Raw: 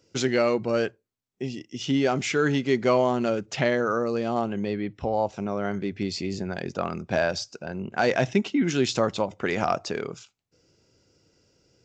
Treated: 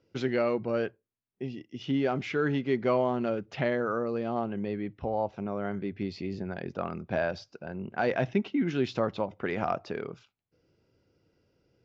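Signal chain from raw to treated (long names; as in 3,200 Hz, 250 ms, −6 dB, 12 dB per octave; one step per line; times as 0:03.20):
high-frequency loss of the air 250 metres
level −4 dB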